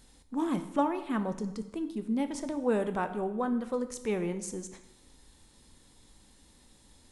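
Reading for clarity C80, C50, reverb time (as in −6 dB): 14.0 dB, 11.5 dB, 0.90 s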